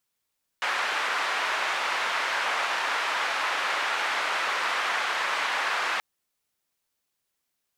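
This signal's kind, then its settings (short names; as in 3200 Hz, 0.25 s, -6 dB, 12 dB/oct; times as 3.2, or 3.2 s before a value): noise band 930–1700 Hz, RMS -27.5 dBFS 5.38 s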